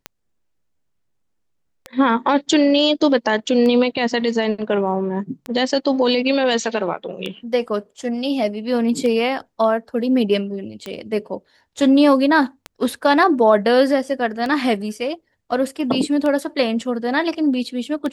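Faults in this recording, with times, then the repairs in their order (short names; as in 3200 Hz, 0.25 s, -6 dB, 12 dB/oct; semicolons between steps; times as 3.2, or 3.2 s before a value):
tick 33 1/3 rpm -13 dBFS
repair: de-click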